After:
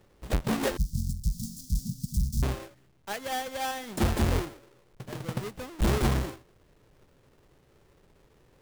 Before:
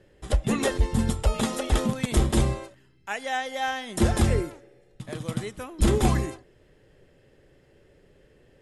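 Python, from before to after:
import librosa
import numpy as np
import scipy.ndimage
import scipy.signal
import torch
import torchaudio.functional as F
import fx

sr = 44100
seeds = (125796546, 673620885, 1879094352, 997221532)

y = fx.halfwave_hold(x, sr)
y = fx.ellip_bandstop(y, sr, low_hz=180.0, high_hz=5200.0, order=3, stop_db=40, at=(0.77, 2.43))
y = y * 10.0 ** (-8.0 / 20.0)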